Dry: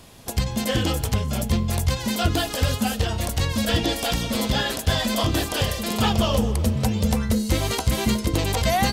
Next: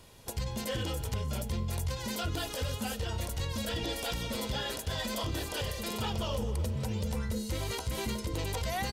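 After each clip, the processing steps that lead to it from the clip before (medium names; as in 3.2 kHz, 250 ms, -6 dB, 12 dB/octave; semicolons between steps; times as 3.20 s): comb 2.1 ms, depth 33%; peak limiter -16.5 dBFS, peak gain reduction 8.5 dB; trim -8.5 dB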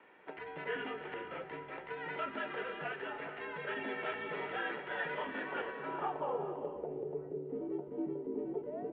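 low-pass sweep 1.9 kHz -> 450 Hz, 5.38–7.26 s; gated-style reverb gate 470 ms rising, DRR 8.5 dB; mistuned SSB -67 Hz 320–3200 Hz; trim -3 dB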